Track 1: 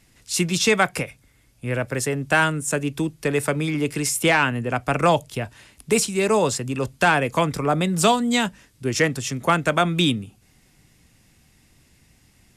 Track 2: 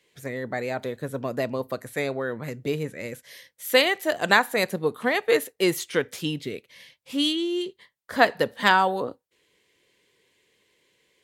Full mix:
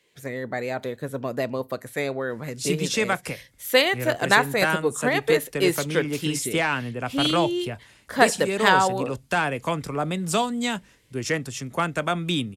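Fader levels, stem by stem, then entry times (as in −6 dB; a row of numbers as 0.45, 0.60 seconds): −5.5, +0.5 decibels; 2.30, 0.00 seconds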